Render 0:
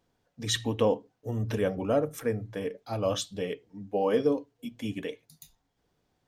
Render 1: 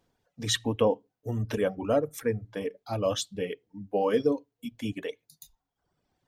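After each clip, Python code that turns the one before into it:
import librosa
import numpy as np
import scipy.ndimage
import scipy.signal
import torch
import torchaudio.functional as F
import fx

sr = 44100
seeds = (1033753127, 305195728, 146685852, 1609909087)

y = fx.dereverb_blind(x, sr, rt60_s=1.1)
y = y * 10.0 ** (1.5 / 20.0)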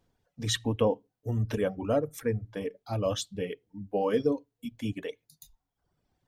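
y = fx.low_shelf(x, sr, hz=140.0, db=8.0)
y = y * 10.0 ** (-2.5 / 20.0)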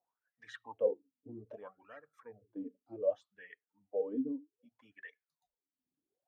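y = fx.wah_lfo(x, sr, hz=0.64, low_hz=250.0, high_hz=1800.0, q=14.0)
y = y * 10.0 ** (3.5 / 20.0)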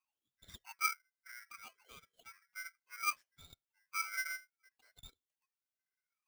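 y = x * np.sign(np.sin(2.0 * np.pi * 1800.0 * np.arange(len(x)) / sr))
y = y * 10.0 ** (-4.5 / 20.0)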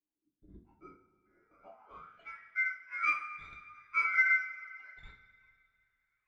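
y = fx.rev_double_slope(x, sr, seeds[0], early_s=0.34, late_s=2.4, knee_db=-18, drr_db=-2.0)
y = fx.filter_sweep_lowpass(y, sr, from_hz=310.0, to_hz=1900.0, start_s=1.3, end_s=2.26, q=4.5)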